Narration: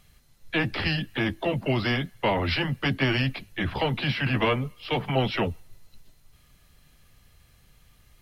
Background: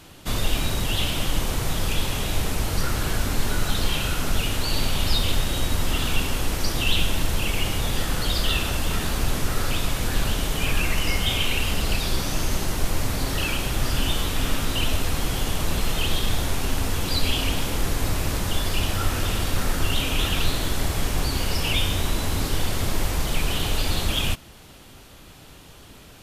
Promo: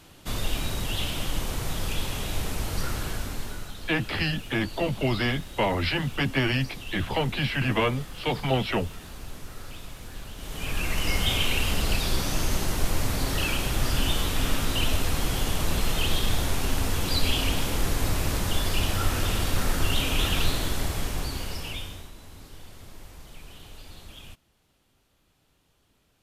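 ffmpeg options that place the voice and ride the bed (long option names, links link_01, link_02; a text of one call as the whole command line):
ffmpeg -i stem1.wav -i stem2.wav -filter_complex "[0:a]adelay=3350,volume=-0.5dB[link_01];[1:a]volume=10dB,afade=type=out:start_time=2.9:duration=0.84:silence=0.266073,afade=type=in:start_time=10.35:duration=0.85:silence=0.177828,afade=type=out:start_time=20.42:duration=1.69:silence=0.1[link_02];[link_01][link_02]amix=inputs=2:normalize=0" out.wav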